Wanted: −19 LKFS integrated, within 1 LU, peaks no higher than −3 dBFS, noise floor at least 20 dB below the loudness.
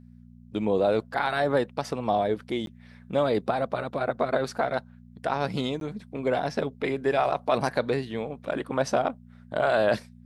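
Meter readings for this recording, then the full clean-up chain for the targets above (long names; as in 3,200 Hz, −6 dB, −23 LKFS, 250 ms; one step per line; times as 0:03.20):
number of dropouts 2; longest dropout 12 ms; mains hum 60 Hz; hum harmonics up to 240 Hz; level of the hum −47 dBFS; integrated loudness −27.5 LKFS; sample peak −10.0 dBFS; target loudness −19.0 LKFS
→ repair the gap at 0:02.66/0:05.80, 12 ms
hum removal 60 Hz, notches 4
level +8.5 dB
brickwall limiter −3 dBFS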